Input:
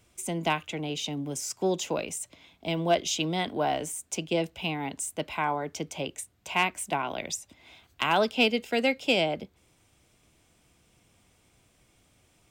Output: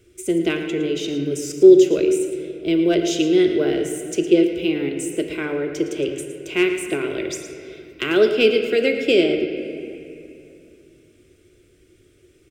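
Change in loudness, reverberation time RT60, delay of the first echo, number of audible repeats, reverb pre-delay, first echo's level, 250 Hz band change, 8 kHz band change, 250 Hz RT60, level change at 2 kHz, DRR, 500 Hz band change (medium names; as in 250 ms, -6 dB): +10.0 dB, 2.6 s, 112 ms, 1, 3 ms, -11.5 dB, +14.0 dB, +1.5 dB, 3.4 s, +4.5 dB, 5.0 dB, +13.0 dB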